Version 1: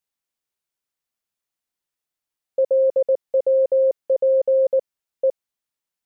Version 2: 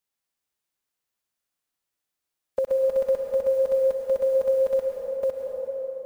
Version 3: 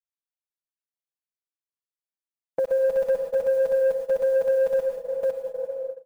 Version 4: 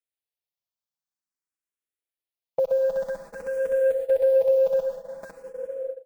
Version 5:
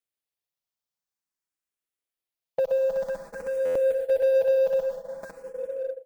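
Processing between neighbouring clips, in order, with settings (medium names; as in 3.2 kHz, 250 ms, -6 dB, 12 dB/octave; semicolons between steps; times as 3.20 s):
formants flattened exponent 0.6; on a send at -1.5 dB: reverberation RT60 3.5 s, pre-delay 88 ms; on the sum: dynamic bell 480 Hz, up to -7 dB, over -27 dBFS, Q 0.85
gate -31 dBFS, range -21 dB; comb 6.1 ms, depth 73%; saturation -14.5 dBFS, distortion -21 dB
barber-pole phaser +0.5 Hz; trim +2.5 dB
in parallel at -5 dB: hard clipper -28.5 dBFS, distortion -5 dB; on the sum: buffer glitch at 3.65 s, samples 512, times 8; trim -3 dB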